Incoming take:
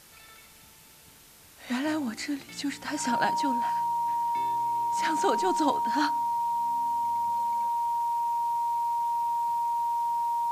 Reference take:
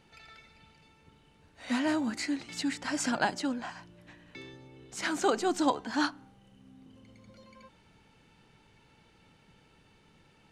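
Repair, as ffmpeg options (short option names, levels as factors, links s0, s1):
-af "bandreject=f=940:w=30,afwtdn=0.0022"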